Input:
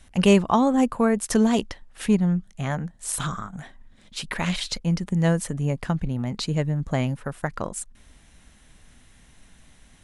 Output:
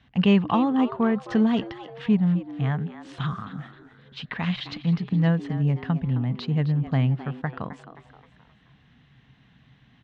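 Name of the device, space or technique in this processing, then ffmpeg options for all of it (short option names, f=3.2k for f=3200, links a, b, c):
frequency-shifting delay pedal into a guitar cabinet: -filter_complex "[0:a]asplit=5[a][b][c][d][e];[b]adelay=263,afreqshift=120,volume=-13dB[f];[c]adelay=526,afreqshift=240,volume=-20.5dB[g];[d]adelay=789,afreqshift=360,volume=-28.1dB[h];[e]adelay=1052,afreqshift=480,volume=-35.6dB[i];[a][f][g][h][i]amix=inputs=5:normalize=0,highpass=100,equalizer=f=130:t=q:w=4:g=7,equalizer=f=360:t=q:w=4:g=-8,equalizer=f=570:t=q:w=4:g=-10,equalizer=f=920:t=q:w=4:g=-3,equalizer=f=1.4k:t=q:w=4:g=-4,equalizer=f=2.3k:t=q:w=4:g=-5,lowpass=f=3.4k:w=0.5412,lowpass=f=3.4k:w=1.3066"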